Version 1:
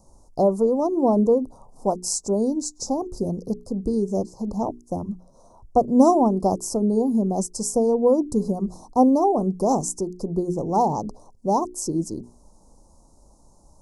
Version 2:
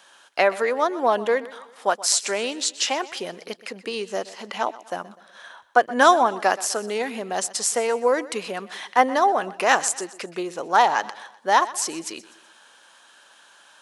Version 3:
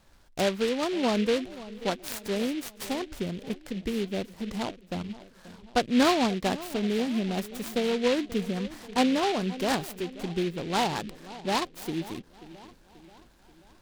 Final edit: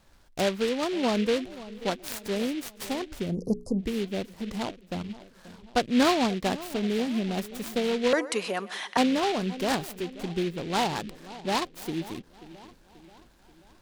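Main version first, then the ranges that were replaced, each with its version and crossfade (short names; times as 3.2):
3
3.31–3.83 from 1, crossfade 0.10 s
8.13–8.97 from 2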